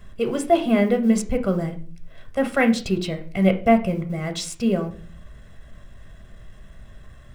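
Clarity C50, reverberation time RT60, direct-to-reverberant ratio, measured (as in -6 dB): 13.0 dB, 0.40 s, 6.5 dB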